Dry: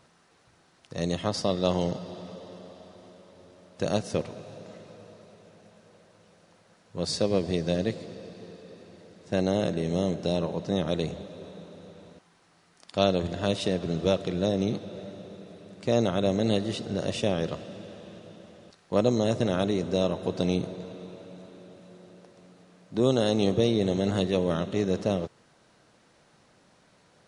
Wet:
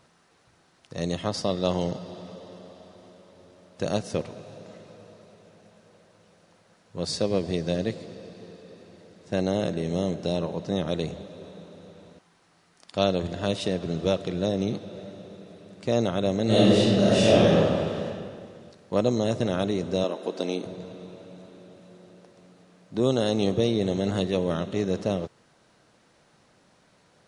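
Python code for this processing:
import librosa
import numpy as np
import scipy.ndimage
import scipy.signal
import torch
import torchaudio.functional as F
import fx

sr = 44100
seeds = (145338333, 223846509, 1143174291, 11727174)

y = fx.reverb_throw(x, sr, start_s=16.45, length_s=1.6, rt60_s=1.9, drr_db=-9.5)
y = fx.highpass(y, sr, hz=240.0, slope=24, at=(20.04, 20.65))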